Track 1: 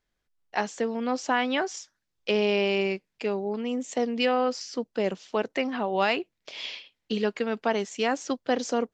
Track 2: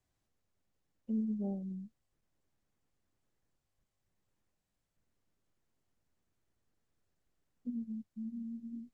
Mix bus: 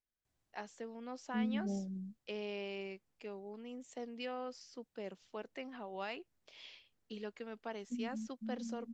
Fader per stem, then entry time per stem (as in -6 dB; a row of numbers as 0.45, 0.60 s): -18.0, -1.5 dB; 0.00, 0.25 s